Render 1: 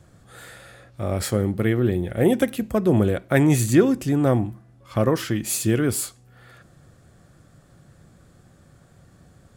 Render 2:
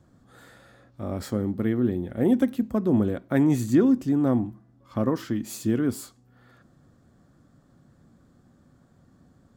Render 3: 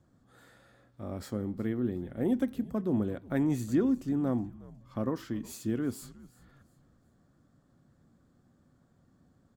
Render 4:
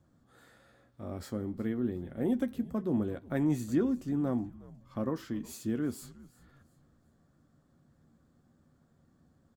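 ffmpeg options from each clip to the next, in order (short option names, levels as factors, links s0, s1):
-af "equalizer=f=250:t=o:w=0.67:g=11,equalizer=f=1000:t=o:w=0.67:g=4,equalizer=f=2500:t=o:w=0.67:g=-5,equalizer=f=10000:t=o:w=0.67:g=-8,volume=0.376"
-filter_complex "[0:a]asplit=4[s0][s1][s2][s3];[s1]adelay=364,afreqshift=-81,volume=0.0944[s4];[s2]adelay=728,afreqshift=-162,volume=0.032[s5];[s3]adelay=1092,afreqshift=-243,volume=0.011[s6];[s0][s4][s5][s6]amix=inputs=4:normalize=0,volume=0.422"
-filter_complex "[0:a]asplit=2[s0][s1];[s1]adelay=13,volume=0.282[s2];[s0][s2]amix=inputs=2:normalize=0,volume=0.841"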